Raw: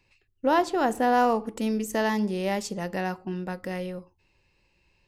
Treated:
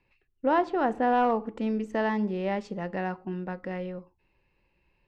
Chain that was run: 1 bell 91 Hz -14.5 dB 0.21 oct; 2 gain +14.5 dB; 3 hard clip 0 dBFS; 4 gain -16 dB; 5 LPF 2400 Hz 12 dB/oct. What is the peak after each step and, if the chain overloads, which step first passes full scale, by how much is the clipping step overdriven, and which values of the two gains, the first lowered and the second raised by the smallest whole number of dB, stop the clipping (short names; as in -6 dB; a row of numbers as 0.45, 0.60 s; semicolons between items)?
-11.0, +3.5, 0.0, -16.0, -15.5 dBFS; step 2, 3.5 dB; step 2 +10.5 dB, step 4 -12 dB